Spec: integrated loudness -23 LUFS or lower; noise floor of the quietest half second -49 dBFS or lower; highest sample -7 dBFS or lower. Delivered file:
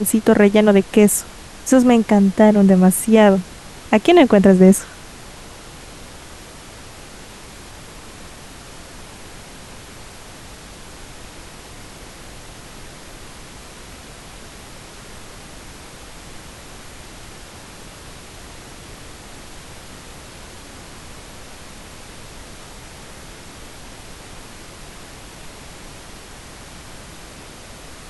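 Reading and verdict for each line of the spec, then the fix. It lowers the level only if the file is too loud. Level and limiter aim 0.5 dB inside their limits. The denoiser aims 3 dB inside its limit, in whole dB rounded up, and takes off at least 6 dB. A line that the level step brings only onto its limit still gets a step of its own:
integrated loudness -13.5 LUFS: fail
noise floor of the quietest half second -38 dBFS: fail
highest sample -1.5 dBFS: fail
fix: denoiser 6 dB, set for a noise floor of -38 dBFS; gain -10 dB

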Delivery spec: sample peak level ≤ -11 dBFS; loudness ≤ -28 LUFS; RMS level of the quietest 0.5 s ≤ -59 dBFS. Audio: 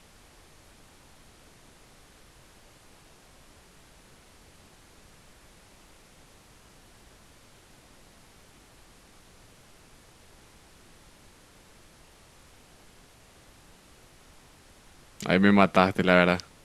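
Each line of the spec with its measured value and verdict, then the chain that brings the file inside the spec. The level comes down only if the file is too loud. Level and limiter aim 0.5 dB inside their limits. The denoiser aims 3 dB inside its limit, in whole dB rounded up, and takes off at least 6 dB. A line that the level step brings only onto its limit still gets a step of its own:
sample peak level -3.0 dBFS: fail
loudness -22.0 LUFS: fail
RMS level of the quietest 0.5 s -55 dBFS: fail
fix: gain -6.5 dB; limiter -11.5 dBFS

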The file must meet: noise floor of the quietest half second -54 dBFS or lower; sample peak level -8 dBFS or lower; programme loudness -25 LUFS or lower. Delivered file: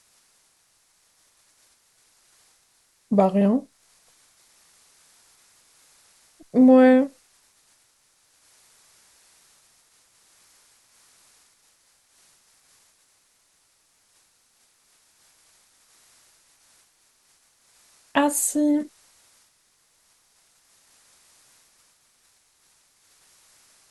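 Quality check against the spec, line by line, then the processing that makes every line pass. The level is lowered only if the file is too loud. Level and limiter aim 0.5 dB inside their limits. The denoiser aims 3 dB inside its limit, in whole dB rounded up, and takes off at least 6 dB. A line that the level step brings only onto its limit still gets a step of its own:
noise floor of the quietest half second -65 dBFS: OK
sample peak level -5.5 dBFS: fail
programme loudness -19.5 LUFS: fail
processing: gain -6 dB

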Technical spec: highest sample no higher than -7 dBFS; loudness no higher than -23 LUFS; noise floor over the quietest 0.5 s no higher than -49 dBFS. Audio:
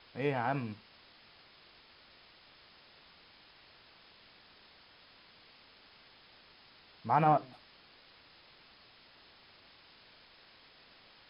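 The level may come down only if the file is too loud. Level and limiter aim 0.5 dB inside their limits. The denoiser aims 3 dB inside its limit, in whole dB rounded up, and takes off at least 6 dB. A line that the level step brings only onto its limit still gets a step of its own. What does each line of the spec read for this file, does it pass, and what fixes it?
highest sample -13.5 dBFS: OK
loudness -32.0 LUFS: OK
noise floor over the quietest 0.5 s -60 dBFS: OK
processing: none

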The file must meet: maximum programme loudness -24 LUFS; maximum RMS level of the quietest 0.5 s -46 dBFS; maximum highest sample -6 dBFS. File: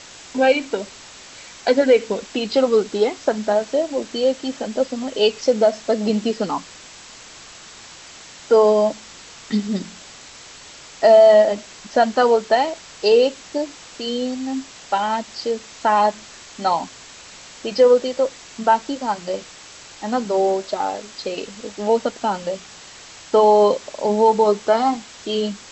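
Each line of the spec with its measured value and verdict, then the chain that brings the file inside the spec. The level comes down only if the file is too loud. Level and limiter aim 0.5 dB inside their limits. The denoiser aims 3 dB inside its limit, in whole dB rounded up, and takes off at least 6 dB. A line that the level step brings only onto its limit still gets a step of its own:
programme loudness -19.5 LUFS: fail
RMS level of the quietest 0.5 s -42 dBFS: fail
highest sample -3.0 dBFS: fail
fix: gain -5 dB

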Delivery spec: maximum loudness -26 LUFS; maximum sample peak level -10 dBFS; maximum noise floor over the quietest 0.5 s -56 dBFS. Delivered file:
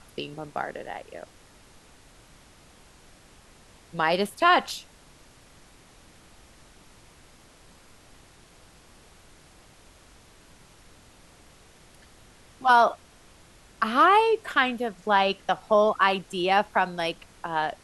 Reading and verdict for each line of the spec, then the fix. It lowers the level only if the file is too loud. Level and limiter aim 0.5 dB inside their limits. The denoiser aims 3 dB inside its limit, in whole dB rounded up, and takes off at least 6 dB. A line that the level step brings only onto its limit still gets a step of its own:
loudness -24.0 LUFS: fail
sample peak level -6.5 dBFS: fail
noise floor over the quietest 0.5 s -54 dBFS: fail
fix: gain -2.5 dB; limiter -10.5 dBFS

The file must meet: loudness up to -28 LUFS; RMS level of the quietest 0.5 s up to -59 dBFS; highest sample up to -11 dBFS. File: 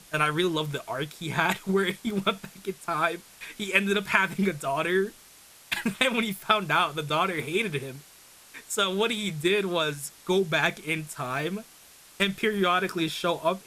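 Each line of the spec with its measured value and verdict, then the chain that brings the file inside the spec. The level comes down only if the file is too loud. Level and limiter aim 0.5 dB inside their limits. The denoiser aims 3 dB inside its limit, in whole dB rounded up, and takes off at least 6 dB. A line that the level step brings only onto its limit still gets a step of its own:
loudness -26.5 LUFS: fail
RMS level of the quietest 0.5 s -53 dBFS: fail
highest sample -4.0 dBFS: fail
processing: denoiser 7 dB, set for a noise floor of -53 dBFS; gain -2 dB; limiter -11.5 dBFS

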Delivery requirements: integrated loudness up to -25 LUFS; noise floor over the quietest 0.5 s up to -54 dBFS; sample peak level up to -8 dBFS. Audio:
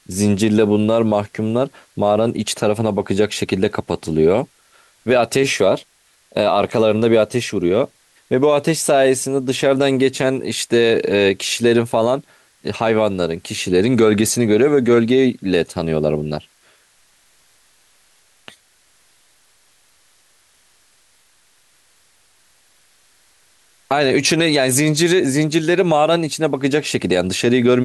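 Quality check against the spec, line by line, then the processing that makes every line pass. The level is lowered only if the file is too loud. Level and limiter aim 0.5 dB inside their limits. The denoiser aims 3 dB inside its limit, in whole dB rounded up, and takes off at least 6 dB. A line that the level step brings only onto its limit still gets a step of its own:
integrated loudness -17.0 LUFS: fail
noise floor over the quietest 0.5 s -56 dBFS: OK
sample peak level -4.5 dBFS: fail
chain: gain -8.5 dB

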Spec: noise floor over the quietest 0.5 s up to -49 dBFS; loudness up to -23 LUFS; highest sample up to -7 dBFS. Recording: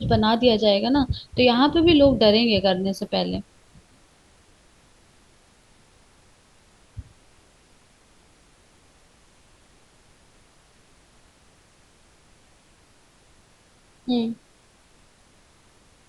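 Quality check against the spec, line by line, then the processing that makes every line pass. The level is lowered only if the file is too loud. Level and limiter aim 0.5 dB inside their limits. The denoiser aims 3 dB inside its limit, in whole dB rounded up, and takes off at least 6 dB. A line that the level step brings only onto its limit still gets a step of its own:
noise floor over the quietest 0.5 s -57 dBFS: OK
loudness -20.0 LUFS: fail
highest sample -4.5 dBFS: fail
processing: gain -3.5 dB

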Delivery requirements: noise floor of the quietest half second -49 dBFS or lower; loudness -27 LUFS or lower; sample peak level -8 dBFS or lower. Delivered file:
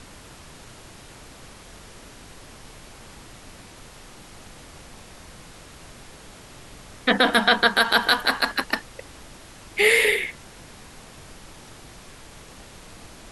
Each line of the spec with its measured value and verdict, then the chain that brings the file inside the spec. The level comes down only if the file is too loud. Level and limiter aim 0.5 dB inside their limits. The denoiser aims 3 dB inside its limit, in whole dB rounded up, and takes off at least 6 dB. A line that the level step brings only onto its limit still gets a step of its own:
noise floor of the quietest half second -45 dBFS: fail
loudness -20.0 LUFS: fail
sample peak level -5.0 dBFS: fail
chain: gain -7.5 dB

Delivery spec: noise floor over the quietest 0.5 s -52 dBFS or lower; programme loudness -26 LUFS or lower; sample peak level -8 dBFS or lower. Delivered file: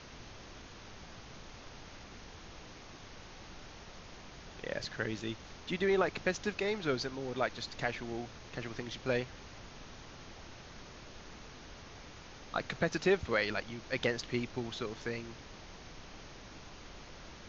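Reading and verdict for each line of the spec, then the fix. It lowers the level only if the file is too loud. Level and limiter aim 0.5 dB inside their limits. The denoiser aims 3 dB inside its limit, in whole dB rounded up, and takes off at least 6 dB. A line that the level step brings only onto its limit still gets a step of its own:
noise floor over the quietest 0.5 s -51 dBFS: fail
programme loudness -35.5 LUFS: OK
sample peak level -16.0 dBFS: OK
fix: denoiser 6 dB, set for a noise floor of -51 dBFS

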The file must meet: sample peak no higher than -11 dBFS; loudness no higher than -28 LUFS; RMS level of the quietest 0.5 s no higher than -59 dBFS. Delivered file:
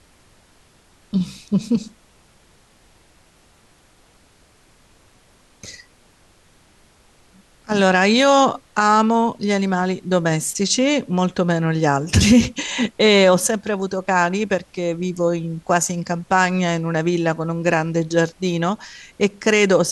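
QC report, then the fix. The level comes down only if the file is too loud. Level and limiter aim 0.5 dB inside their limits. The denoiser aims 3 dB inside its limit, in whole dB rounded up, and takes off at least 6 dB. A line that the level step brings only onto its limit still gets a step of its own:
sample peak -4.0 dBFS: fail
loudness -18.5 LUFS: fail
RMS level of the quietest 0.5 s -54 dBFS: fail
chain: gain -10 dB

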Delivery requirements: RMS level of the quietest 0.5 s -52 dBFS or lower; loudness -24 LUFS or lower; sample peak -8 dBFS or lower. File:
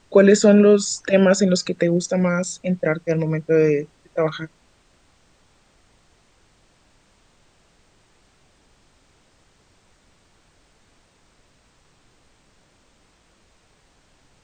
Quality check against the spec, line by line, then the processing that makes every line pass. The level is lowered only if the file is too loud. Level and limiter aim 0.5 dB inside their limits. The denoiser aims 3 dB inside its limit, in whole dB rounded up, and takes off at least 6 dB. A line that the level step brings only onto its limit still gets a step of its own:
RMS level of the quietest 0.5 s -59 dBFS: OK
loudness -18.5 LUFS: fail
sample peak -2.5 dBFS: fail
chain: gain -6 dB

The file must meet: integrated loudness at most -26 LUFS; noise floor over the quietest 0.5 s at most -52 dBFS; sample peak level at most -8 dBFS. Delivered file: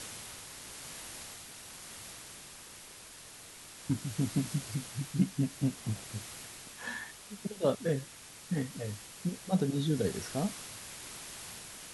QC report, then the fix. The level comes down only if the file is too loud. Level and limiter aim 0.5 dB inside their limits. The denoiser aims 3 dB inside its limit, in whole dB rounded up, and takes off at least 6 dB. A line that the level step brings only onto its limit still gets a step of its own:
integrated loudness -36.5 LUFS: OK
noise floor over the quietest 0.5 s -51 dBFS: fail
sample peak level -16.0 dBFS: OK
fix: denoiser 6 dB, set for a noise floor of -51 dBFS

